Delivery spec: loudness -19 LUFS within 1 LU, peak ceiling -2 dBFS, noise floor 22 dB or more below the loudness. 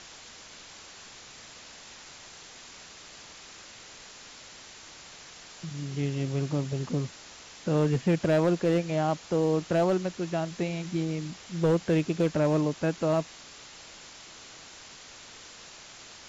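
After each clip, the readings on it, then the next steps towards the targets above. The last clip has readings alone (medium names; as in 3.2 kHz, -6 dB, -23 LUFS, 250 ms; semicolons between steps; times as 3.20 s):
clipped samples 0.6%; clipping level -18.0 dBFS; noise floor -48 dBFS; noise floor target -50 dBFS; loudness -28.0 LUFS; peak level -18.0 dBFS; loudness target -19.0 LUFS
-> clip repair -18 dBFS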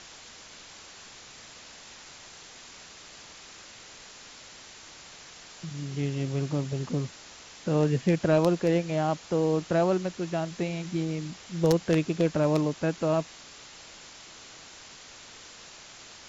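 clipped samples 0.0%; noise floor -48 dBFS; noise floor target -50 dBFS
-> noise reduction 6 dB, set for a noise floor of -48 dBFS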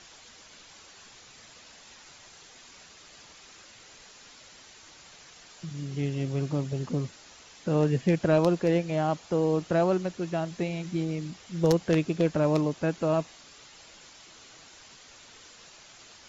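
noise floor -52 dBFS; loudness -27.5 LUFS; peak level -9.0 dBFS; loudness target -19.0 LUFS
-> trim +8.5 dB; peak limiter -2 dBFS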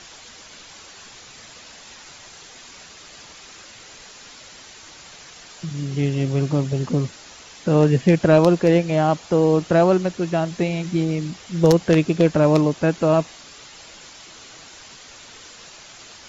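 loudness -19.5 LUFS; peak level -2.0 dBFS; noise floor -44 dBFS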